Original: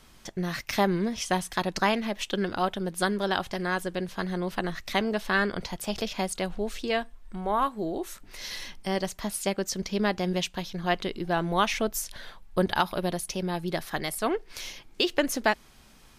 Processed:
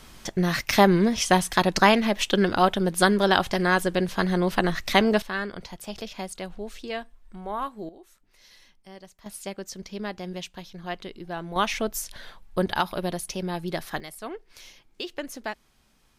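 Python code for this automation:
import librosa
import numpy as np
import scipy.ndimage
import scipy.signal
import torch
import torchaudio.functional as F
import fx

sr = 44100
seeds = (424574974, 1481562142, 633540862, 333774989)

y = fx.gain(x, sr, db=fx.steps((0.0, 7.0), (5.22, -5.0), (7.89, -17.0), (9.26, -7.0), (11.56, 0.0), (14.0, -9.0)))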